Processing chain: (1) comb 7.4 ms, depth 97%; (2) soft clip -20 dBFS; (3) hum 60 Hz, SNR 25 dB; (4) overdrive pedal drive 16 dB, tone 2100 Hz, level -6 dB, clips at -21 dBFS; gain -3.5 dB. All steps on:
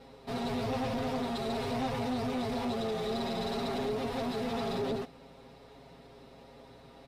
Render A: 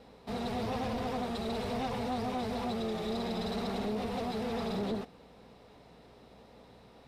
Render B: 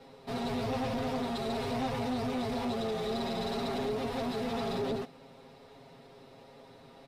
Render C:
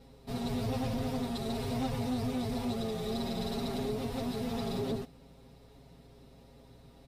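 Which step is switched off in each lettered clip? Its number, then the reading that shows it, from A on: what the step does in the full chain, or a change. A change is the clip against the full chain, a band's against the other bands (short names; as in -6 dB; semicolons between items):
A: 1, momentary loudness spread change -18 LU; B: 3, momentary loudness spread change -18 LU; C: 4, momentary loudness spread change -18 LU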